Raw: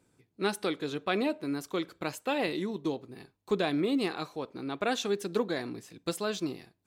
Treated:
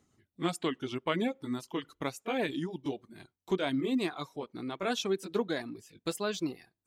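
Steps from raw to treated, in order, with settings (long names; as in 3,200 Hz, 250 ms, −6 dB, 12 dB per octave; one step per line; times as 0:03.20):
pitch glide at a constant tempo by −3 semitones ending unshifted
reverb reduction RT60 0.57 s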